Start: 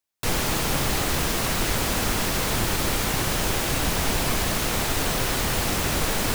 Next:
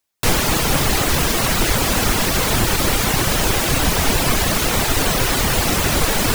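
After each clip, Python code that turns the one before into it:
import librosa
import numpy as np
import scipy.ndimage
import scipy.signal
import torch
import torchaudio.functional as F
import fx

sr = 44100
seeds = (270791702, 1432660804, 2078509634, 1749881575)

y = fx.dereverb_blind(x, sr, rt60_s=0.66)
y = y * 10.0 ** (8.5 / 20.0)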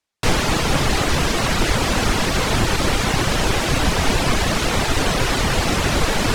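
y = fx.air_absorb(x, sr, metres=57.0)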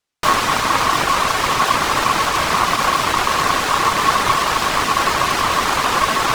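y = fx.tracing_dist(x, sr, depth_ms=0.04)
y = y * np.sin(2.0 * np.pi * 1100.0 * np.arange(len(y)) / sr)
y = y * 10.0 ** (4.0 / 20.0)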